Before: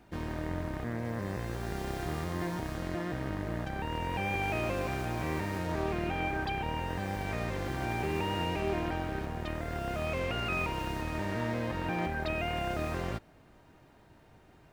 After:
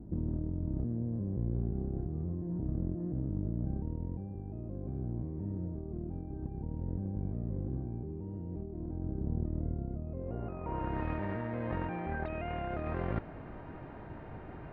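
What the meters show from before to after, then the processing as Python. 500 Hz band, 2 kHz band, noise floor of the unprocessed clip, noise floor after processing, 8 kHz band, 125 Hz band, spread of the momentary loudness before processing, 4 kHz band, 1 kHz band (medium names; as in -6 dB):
-6.5 dB, -13.0 dB, -59 dBFS, -46 dBFS, under -30 dB, +1.0 dB, 5 LU, under -20 dB, -9.0 dB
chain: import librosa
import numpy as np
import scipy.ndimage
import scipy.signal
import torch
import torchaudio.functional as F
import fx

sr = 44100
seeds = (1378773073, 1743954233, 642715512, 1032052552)

y = fx.over_compress(x, sr, threshold_db=-41.0, ratio=-1.0)
y = fx.filter_sweep_lowpass(y, sr, from_hz=270.0, to_hz=2300.0, start_s=10.03, end_s=11.06, q=0.9)
y = fx.spacing_loss(y, sr, db_at_10k=28)
y = y * 10.0 ** (7.0 / 20.0)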